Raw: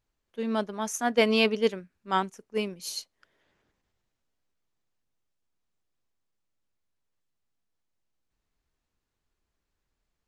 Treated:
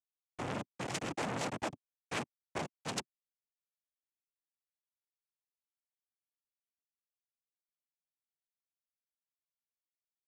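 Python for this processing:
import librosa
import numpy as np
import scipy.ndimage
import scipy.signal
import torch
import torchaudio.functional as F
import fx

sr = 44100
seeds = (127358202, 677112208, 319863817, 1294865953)

y = fx.schmitt(x, sr, flips_db=-30.0)
y = fx.noise_vocoder(y, sr, seeds[0], bands=4)
y = fx.transformer_sat(y, sr, knee_hz=1700.0)
y = y * 10.0 ** (2.5 / 20.0)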